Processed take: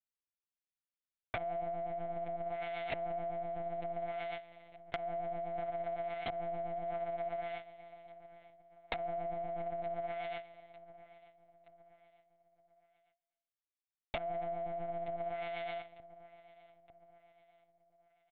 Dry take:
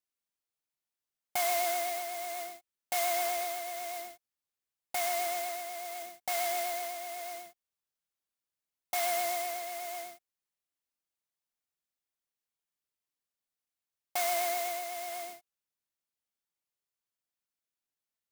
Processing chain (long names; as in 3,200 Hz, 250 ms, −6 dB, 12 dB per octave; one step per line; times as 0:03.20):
stylus tracing distortion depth 0.21 ms
slap from a distant wall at 110 metres, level −8 dB
treble cut that deepens with the level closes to 420 Hz, closed at −33 dBFS
graphic EQ with 10 bands 250 Hz −9 dB, 500 Hz +4 dB, 1,000 Hz +8 dB
noise gate with hold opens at −35 dBFS
low-shelf EQ 470 Hz −9.5 dB
phaser with its sweep stopped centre 370 Hz, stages 4
repeating echo 910 ms, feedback 46%, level −23.5 dB
one-pitch LPC vocoder at 8 kHz 170 Hz
downward compressor 4 to 1, threshold −53 dBFS, peak gain reduction 11 dB
level +16.5 dB